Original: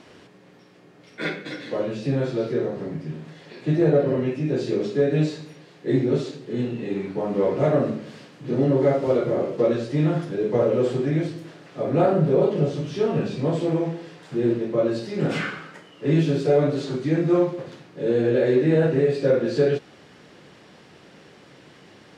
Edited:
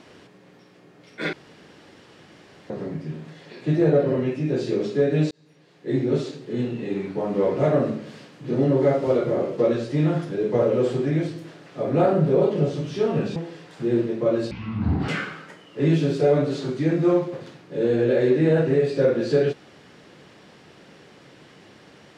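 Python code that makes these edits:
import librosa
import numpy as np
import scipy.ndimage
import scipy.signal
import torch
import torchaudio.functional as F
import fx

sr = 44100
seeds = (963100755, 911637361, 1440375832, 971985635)

y = fx.edit(x, sr, fx.room_tone_fill(start_s=1.33, length_s=1.37),
    fx.fade_in_span(start_s=5.31, length_s=0.86),
    fx.cut(start_s=13.36, length_s=0.52),
    fx.speed_span(start_s=15.03, length_s=0.31, speed=0.54), tone=tone)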